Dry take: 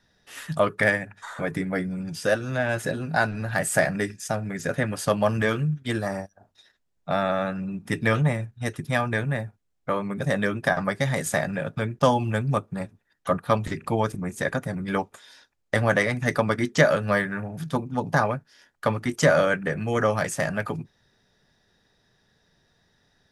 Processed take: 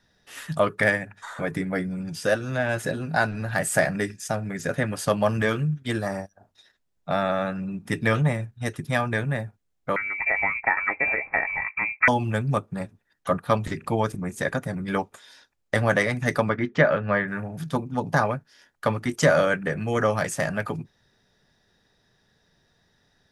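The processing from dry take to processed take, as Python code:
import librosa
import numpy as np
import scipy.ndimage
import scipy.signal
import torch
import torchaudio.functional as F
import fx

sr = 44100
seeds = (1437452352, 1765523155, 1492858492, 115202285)

y = fx.freq_invert(x, sr, carrier_hz=2500, at=(9.96, 12.08))
y = fx.cheby1_lowpass(y, sr, hz=2200.0, order=2, at=(16.49, 17.28))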